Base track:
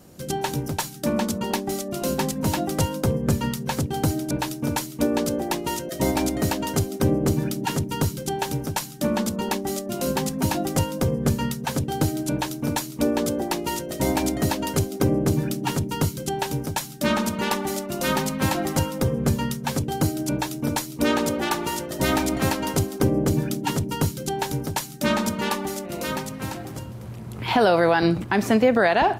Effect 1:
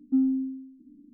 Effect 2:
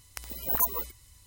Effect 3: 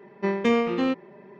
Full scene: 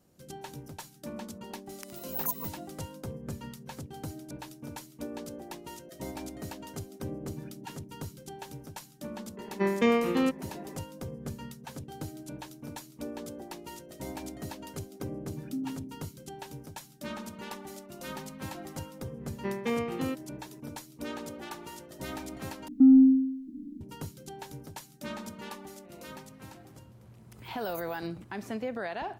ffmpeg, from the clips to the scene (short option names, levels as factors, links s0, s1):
-filter_complex "[2:a]asplit=2[s0][s1];[3:a]asplit=2[s2][s3];[1:a]asplit=2[s4][s5];[0:a]volume=0.141[s6];[s0]highpass=390[s7];[s2]acompressor=mode=upward:threshold=0.0126:ratio=2.5:attack=3.2:release=140:knee=2.83:detection=peak[s8];[s5]alimiter=level_in=11.2:limit=0.891:release=50:level=0:latency=1[s9];[s1]asplit=2[s10][s11];[s11]adelay=3.2,afreqshift=-2.8[s12];[s10][s12]amix=inputs=2:normalize=1[s13];[s6]asplit=2[s14][s15];[s14]atrim=end=22.684[s16];[s9]atrim=end=1.13,asetpts=PTS-STARTPTS,volume=0.282[s17];[s15]atrim=start=23.806[s18];[s7]atrim=end=1.26,asetpts=PTS-STARTPTS,volume=0.473,afade=t=in:d=0.004:c=hsin,afade=t=out:st=1.256:d=0.004:c=hsin,adelay=1660[s19];[s8]atrim=end=1.39,asetpts=PTS-STARTPTS,volume=0.75,afade=t=in:d=0.004:c=hsin,afade=t=out:st=1.386:d=0.004:c=hsin,adelay=9370[s20];[s4]atrim=end=1.13,asetpts=PTS-STARTPTS,volume=0.251,afade=t=in:d=0.004:c=hsin,afade=t=out:st=1.126:d=0.004:c=hsin,adelay=679140S[s21];[s3]atrim=end=1.39,asetpts=PTS-STARTPTS,volume=0.355,afade=t=in:d=0.004:c=hsin,afade=t=out:st=1.386:d=0.004:c=hsin,adelay=19210[s22];[s13]atrim=end=1.26,asetpts=PTS-STARTPTS,volume=0.15,afade=t=in:d=0.004:c=hsin,afade=t=out:st=1.256:d=0.004:c=hsin,adelay=27150[s23];[s16][s17]acrossfade=d=0.004:c1=hsin:c2=hsin[s24];[s24][s18]acrossfade=d=0.004:c1=hsin:c2=hsin[s25];[s25][s19][s20][s21][s22][s23]amix=inputs=6:normalize=0"